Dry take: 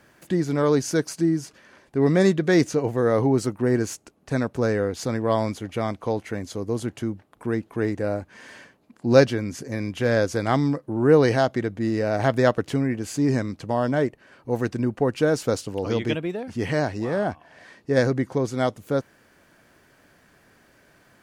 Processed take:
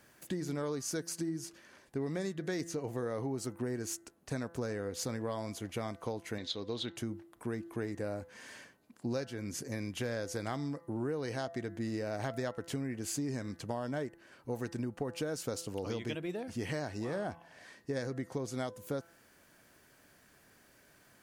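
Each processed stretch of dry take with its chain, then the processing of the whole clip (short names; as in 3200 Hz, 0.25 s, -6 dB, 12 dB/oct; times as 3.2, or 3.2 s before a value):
6.38–6.96 synth low-pass 3700 Hz, resonance Q 13 + low shelf 170 Hz -8 dB
whole clip: high shelf 5300 Hz +10 dB; de-hum 168.6 Hz, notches 12; compressor 12:1, threshold -25 dBFS; gain -7.5 dB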